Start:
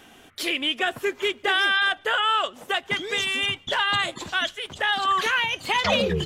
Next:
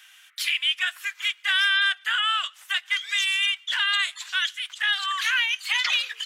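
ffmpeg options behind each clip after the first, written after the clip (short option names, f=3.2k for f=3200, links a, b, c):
-af "highpass=f=1.5k:w=0.5412,highpass=f=1.5k:w=1.3066,volume=2dB"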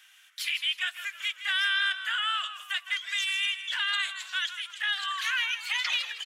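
-filter_complex "[0:a]asplit=5[a][b][c][d][e];[b]adelay=159,afreqshift=-54,volume=-11.5dB[f];[c]adelay=318,afreqshift=-108,volume=-19.5dB[g];[d]adelay=477,afreqshift=-162,volume=-27.4dB[h];[e]adelay=636,afreqshift=-216,volume=-35.4dB[i];[a][f][g][h][i]amix=inputs=5:normalize=0,volume=-5.5dB"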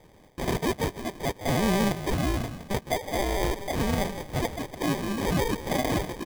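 -af "acrusher=samples=32:mix=1:aa=0.000001,volume=3dB"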